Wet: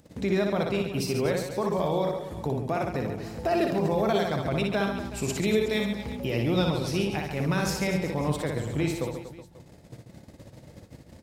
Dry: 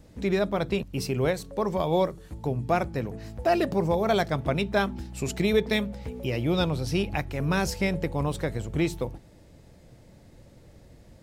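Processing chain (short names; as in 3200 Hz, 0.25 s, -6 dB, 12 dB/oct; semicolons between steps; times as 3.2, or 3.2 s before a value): HPF 89 Hz 12 dB/oct; gate -50 dBFS, range -44 dB; upward compressor, threshold -31 dBFS; limiter -18 dBFS, peak gain reduction 7 dB; reverse bouncing-ball echo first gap 60 ms, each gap 1.3×, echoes 5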